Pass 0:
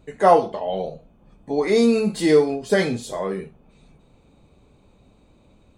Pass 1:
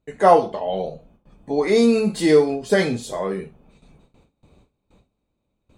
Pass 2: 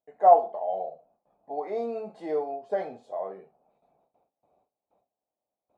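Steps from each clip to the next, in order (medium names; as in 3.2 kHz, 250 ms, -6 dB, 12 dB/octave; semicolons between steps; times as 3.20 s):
gate with hold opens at -44 dBFS; trim +1 dB
band-pass filter 710 Hz, Q 5.2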